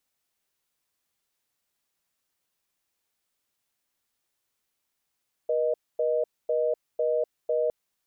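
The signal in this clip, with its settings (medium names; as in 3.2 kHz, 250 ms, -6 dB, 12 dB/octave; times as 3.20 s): call progress tone reorder tone, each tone -25 dBFS 2.21 s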